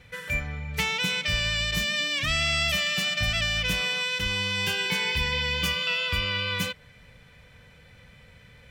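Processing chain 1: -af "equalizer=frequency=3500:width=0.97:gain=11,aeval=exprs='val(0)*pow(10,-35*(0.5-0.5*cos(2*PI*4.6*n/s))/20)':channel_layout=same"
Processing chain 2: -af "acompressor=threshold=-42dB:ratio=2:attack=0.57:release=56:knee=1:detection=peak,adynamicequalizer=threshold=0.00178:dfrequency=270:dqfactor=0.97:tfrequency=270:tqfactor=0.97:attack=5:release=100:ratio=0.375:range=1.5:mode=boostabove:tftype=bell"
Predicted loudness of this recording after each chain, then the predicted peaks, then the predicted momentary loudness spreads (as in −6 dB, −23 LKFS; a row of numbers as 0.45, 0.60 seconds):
−23.5, −36.0 LKFS; −7.0, −25.5 dBFS; 9, 17 LU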